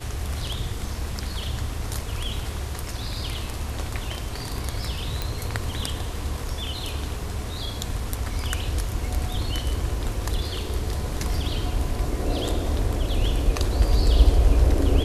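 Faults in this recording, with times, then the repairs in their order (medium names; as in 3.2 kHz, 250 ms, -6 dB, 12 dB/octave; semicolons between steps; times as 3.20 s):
5.22 s: pop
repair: de-click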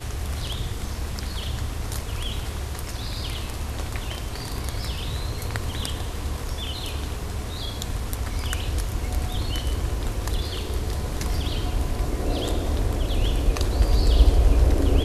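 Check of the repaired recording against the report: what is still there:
5.22 s: pop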